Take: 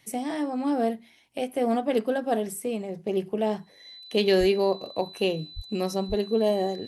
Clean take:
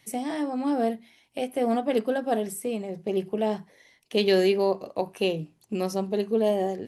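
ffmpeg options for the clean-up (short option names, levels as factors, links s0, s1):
-filter_complex "[0:a]bandreject=f=4000:w=30,asplit=3[s0][s1][s2];[s0]afade=t=out:st=4.39:d=0.02[s3];[s1]highpass=f=140:w=0.5412,highpass=f=140:w=1.3066,afade=t=in:st=4.39:d=0.02,afade=t=out:st=4.51:d=0.02[s4];[s2]afade=t=in:st=4.51:d=0.02[s5];[s3][s4][s5]amix=inputs=3:normalize=0,asplit=3[s6][s7][s8];[s6]afade=t=out:st=5.55:d=0.02[s9];[s7]highpass=f=140:w=0.5412,highpass=f=140:w=1.3066,afade=t=in:st=5.55:d=0.02,afade=t=out:st=5.67:d=0.02[s10];[s8]afade=t=in:st=5.67:d=0.02[s11];[s9][s10][s11]amix=inputs=3:normalize=0,asplit=3[s12][s13][s14];[s12]afade=t=out:st=6.08:d=0.02[s15];[s13]highpass=f=140:w=0.5412,highpass=f=140:w=1.3066,afade=t=in:st=6.08:d=0.02,afade=t=out:st=6.2:d=0.02[s16];[s14]afade=t=in:st=6.2:d=0.02[s17];[s15][s16][s17]amix=inputs=3:normalize=0"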